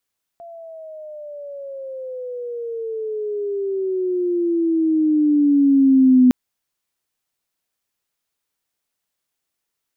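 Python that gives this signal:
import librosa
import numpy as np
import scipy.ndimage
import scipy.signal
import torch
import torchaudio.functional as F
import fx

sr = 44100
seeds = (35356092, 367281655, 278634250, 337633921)

y = fx.riser_tone(sr, length_s=5.91, level_db=-8, wave='sine', hz=686.0, rise_st=-17.5, swell_db=27.0)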